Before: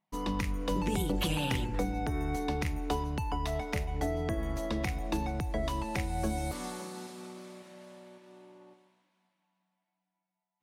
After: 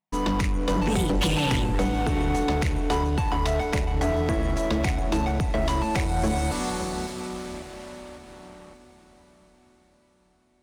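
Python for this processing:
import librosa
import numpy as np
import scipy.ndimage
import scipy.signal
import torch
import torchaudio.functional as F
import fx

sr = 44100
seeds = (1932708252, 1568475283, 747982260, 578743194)

p1 = scipy.signal.sosfilt(scipy.signal.butter(4, 10000.0, 'lowpass', fs=sr, output='sos'), x)
p2 = fx.leveller(p1, sr, passes=3)
y = p2 + fx.echo_diffused(p2, sr, ms=690, feedback_pct=46, wet_db=-14.5, dry=0)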